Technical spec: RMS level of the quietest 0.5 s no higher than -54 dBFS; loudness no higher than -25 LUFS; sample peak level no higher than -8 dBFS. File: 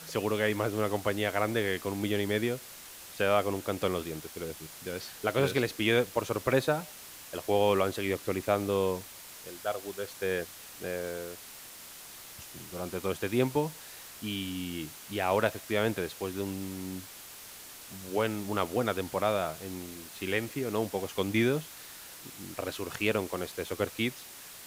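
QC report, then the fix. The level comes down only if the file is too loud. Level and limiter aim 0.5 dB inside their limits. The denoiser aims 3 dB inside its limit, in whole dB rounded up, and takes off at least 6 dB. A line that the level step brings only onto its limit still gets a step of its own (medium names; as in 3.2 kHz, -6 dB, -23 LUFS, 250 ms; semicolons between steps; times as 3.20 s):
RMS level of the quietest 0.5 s -48 dBFS: fail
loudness -31.5 LUFS: pass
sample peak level -12.5 dBFS: pass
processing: noise reduction 9 dB, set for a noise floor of -48 dBFS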